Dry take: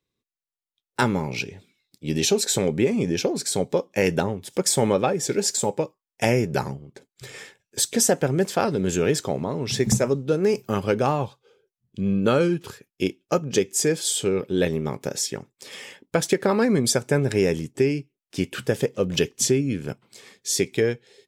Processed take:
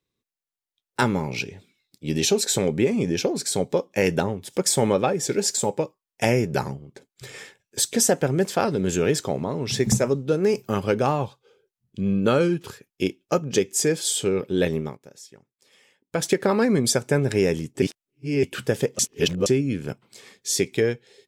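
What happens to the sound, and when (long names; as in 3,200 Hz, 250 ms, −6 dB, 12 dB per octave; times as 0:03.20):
0:14.79–0:16.24: duck −18.5 dB, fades 0.19 s
0:17.82–0:18.43: reverse
0:18.99–0:19.46: reverse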